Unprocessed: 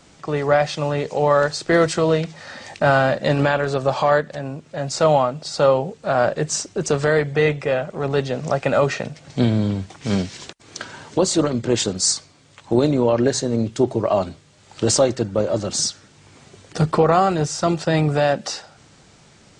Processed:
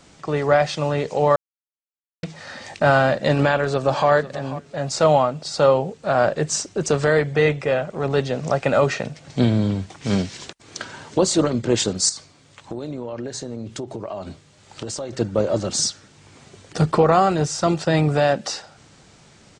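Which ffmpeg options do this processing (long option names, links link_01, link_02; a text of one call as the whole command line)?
ffmpeg -i in.wav -filter_complex "[0:a]asplit=2[link_01][link_02];[link_02]afade=type=in:start_time=3.34:duration=0.01,afade=type=out:start_time=4.09:duration=0.01,aecho=0:1:490|980:0.177828|0.0355656[link_03];[link_01][link_03]amix=inputs=2:normalize=0,asettb=1/sr,asplit=3[link_04][link_05][link_06];[link_04]atrim=end=12.094[link_07];[link_05]atrim=start=12.09:end=15.13,asetpts=PTS-STARTPTS,afade=type=in:duration=0.004:curve=qsin,afade=type=out:start_time=3.036:duration=0.004:curve=qsin,acompressor=threshold=-27dB:ratio=6:attack=3.2:release=140:knee=1:detection=peak[link_08];[link_06]atrim=start=15.126[link_09];[link_07][link_08]acrossfade=duration=0.004:curve1=hsin:curve2=qsin[link_10];[link_10][link_09]acrossfade=duration=0.004:curve1=qsin:curve2=hsin,asplit=3[link_11][link_12][link_13];[link_11]atrim=end=1.36,asetpts=PTS-STARTPTS,afade=type=out:start_time=1.356:duration=0.004:curve=hsin[link_14];[link_12]atrim=start=1.36:end=2.23,asetpts=PTS-STARTPTS,volume=0[link_15];[link_13]atrim=start=2.23,asetpts=PTS-STARTPTS,afade=type=in:duration=0.004:curve=hsin[link_16];[link_14][link_15][link_16]concat=n=3:v=0:a=1" out.wav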